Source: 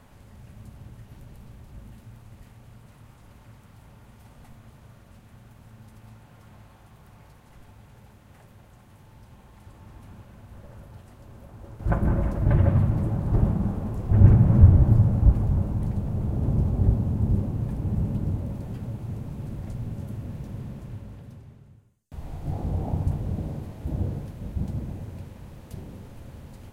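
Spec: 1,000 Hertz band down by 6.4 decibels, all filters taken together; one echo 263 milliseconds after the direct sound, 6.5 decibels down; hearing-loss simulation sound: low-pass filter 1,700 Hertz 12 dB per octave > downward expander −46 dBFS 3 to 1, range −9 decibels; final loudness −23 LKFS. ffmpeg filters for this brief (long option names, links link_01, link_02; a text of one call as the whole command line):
ffmpeg -i in.wav -af "lowpass=1700,equalizer=frequency=1000:width_type=o:gain=-8.5,aecho=1:1:263:0.473,agate=range=-9dB:threshold=-46dB:ratio=3,volume=0.5dB" out.wav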